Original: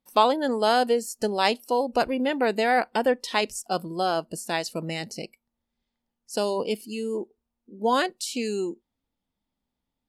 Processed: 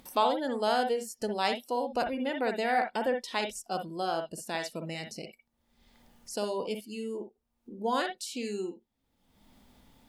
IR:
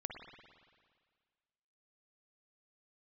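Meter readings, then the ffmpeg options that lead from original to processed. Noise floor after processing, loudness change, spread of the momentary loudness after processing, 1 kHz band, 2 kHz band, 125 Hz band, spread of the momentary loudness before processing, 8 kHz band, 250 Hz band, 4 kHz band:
-78 dBFS, -6.5 dB, 11 LU, -6.0 dB, -6.0 dB, -6.0 dB, 11 LU, -6.5 dB, -6.5 dB, -6.5 dB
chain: -filter_complex "[0:a]acompressor=mode=upward:threshold=-29dB:ratio=2.5[a];[1:a]atrim=start_sample=2205,atrim=end_sample=3969[b];[a][b]afir=irnorm=-1:irlink=0,volume=-3.5dB"

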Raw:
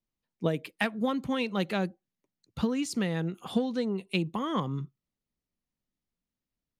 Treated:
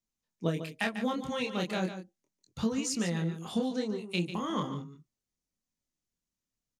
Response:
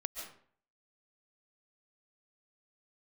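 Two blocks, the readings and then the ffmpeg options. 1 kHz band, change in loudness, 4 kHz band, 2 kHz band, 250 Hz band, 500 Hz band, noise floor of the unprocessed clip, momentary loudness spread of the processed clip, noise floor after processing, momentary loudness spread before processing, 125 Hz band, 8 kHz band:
-2.5 dB, -2.0 dB, -0.5 dB, -2.0 dB, -2.5 dB, -2.5 dB, under -85 dBFS, 6 LU, under -85 dBFS, 5 LU, -1.5 dB, +5.5 dB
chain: -filter_complex "[0:a]equalizer=f=6.5k:t=o:w=0.82:g=10,flanger=delay=22.5:depth=6:speed=0.36,asplit=2[a][b];[b]aecho=0:1:146:0.299[c];[a][c]amix=inputs=2:normalize=0"

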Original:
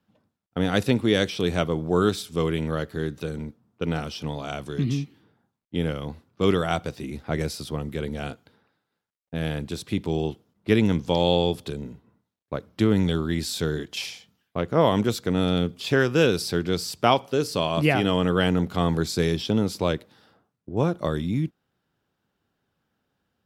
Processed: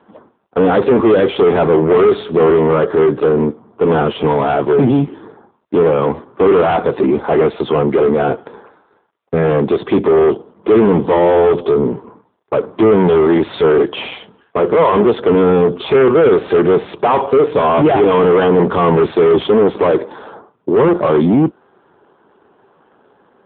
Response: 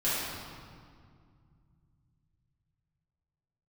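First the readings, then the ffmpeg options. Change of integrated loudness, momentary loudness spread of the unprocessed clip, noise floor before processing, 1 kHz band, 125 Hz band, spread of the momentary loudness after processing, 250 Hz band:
+12.0 dB, 13 LU, -80 dBFS, +13.0 dB, +5.0 dB, 8 LU, +10.0 dB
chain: -filter_complex "[0:a]equalizer=f=400:t=o:w=0.67:g=9,equalizer=f=1k:t=o:w=0.67:g=7,equalizer=f=2.5k:t=o:w=0.67:g=-4,asplit=2[a][b];[b]highpass=f=720:p=1,volume=37dB,asoftclip=type=tanh:threshold=-0.5dB[c];[a][c]amix=inputs=2:normalize=0,lowpass=f=1k:p=1,volume=-6dB,volume=-1dB" -ar 8000 -c:a libopencore_amrnb -b:a 7400

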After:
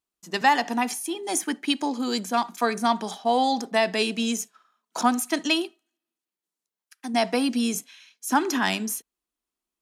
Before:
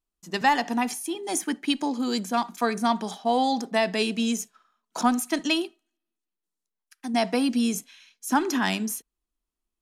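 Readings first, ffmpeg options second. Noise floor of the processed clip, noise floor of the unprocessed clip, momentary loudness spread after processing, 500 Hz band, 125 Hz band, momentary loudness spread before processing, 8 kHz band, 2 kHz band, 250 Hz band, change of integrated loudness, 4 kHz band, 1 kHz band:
under -85 dBFS, under -85 dBFS, 9 LU, +1.0 dB, n/a, 9 LU, +2.0 dB, +2.0 dB, -1.0 dB, +1.0 dB, +2.0 dB, +1.5 dB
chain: -af "highpass=f=240:p=1,volume=2dB"

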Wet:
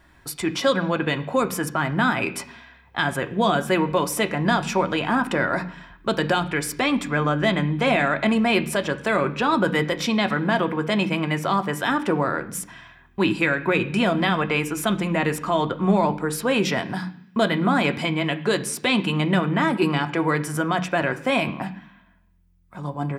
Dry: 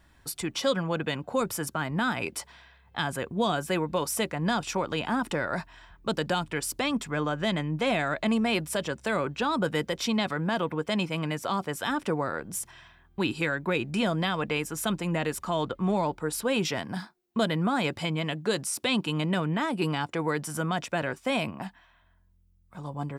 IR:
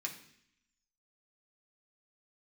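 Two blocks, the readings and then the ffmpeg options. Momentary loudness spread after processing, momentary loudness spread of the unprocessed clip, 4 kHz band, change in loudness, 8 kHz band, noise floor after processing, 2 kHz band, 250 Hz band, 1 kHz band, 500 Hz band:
8 LU, 7 LU, +4.5 dB, +6.5 dB, +2.5 dB, -54 dBFS, +8.0 dB, +6.5 dB, +7.0 dB, +6.0 dB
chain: -filter_complex "[0:a]asplit=2[a][b];[1:a]atrim=start_sample=2205,lowpass=3.2k[c];[b][c]afir=irnorm=-1:irlink=0,volume=0dB[d];[a][d]amix=inputs=2:normalize=0,volume=3dB"

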